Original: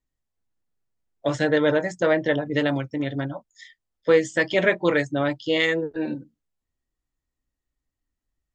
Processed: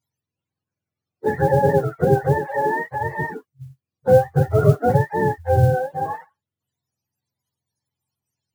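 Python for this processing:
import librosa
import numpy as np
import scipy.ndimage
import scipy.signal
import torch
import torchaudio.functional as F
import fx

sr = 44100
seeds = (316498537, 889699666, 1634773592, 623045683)

y = fx.octave_mirror(x, sr, pivot_hz=500.0)
y = fx.highpass(y, sr, hz=230.0, slope=24, at=(2.47, 2.87))
y = fx.mod_noise(y, sr, seeds[0], snr_db=31)
y = y * 10.0 ** (4.5 / 20.0)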